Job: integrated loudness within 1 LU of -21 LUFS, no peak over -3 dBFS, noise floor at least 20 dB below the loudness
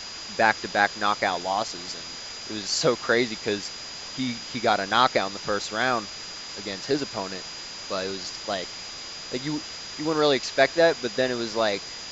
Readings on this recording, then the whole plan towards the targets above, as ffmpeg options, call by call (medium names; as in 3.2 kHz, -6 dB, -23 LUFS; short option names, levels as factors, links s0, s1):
steady tone 4.9 kHz; tone level -38 dBFS; noise floor -38 dBFS; noise floor target -46 dBFS; loudness -26.0 LUFS; peak level -3.5 dBFS; loudness target -21.0 LUFS
-> -af "bandreject=f=4900:w=30"
-af "afftdn=nr=8:nf=-38"
-af "volume=1.78,alimiter=limit=0.708:level=0:latency=1"